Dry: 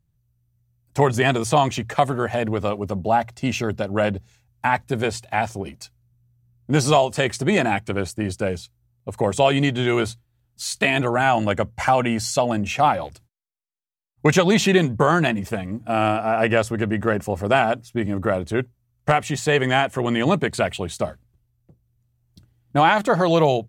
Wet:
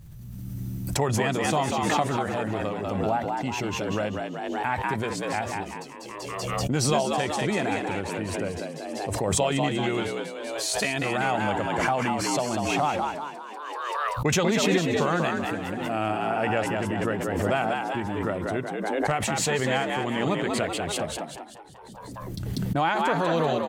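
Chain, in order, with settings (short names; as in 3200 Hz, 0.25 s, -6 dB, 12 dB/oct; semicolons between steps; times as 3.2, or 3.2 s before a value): frequency-shifting echo 0.192 s, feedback 48%, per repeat +71 Hz, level -4 dB; backwards sustainer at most 24 dB/s; gain -8.5 dB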